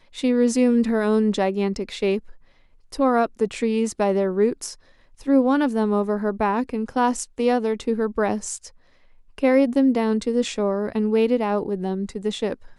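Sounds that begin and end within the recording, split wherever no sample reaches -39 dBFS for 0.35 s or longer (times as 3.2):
2.92–4.75
5.2–8.68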